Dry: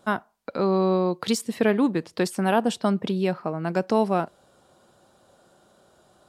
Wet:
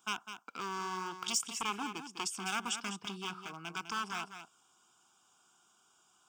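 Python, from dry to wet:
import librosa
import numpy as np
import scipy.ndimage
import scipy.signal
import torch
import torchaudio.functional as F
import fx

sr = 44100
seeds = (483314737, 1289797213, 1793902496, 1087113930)

y = np.minimum(x, 2.0 * 10.0 ** (-19.5 / 20.0) - x)
y = fx.highpass(y, sr, hz=780.0, slope=6)
y = fx.high_shelf(y, sr, hz=2600.0, db=9.0)
y = fx.fixed_phaser(y, sr, hz=2800.0, stages=8)
y = y + 10.0 ** (-9.5 / 20.0) * np.pad(y, (int(203 * sr / 1000.0), 0))[:len(y)]
y = F.gain(torch.from_numpy(y), -6.5).numpy()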